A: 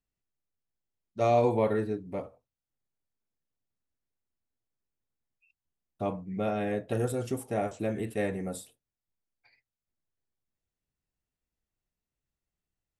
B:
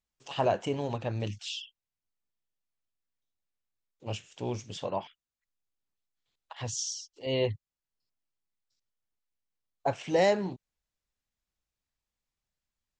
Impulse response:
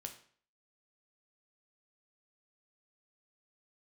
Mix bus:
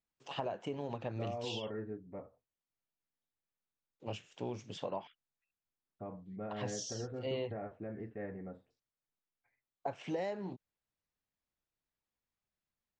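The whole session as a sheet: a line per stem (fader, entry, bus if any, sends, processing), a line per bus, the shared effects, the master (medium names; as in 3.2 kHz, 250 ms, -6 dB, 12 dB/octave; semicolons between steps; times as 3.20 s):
-10.5 dB, 0.00 s, no send, Chebyshev low-pass 1.8 kHz, order 3; peak limiter -22 dBFS, peak gain reduction 8 dB
-1.5 dB, 0.00 s, no send, high-pass 130 Hz; treble shelf 4.5 kHz -12 dB; compression 8:1, threshold -33 dBFS, peak gain reduction 13 dB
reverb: none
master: none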